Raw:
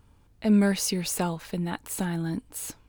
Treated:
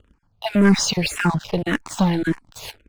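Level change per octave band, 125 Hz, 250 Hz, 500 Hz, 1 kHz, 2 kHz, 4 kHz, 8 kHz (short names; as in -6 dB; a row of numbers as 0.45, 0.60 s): +7.5, +6.0, +7.0, +8.5, +11.0, +9.5, +3.5 dB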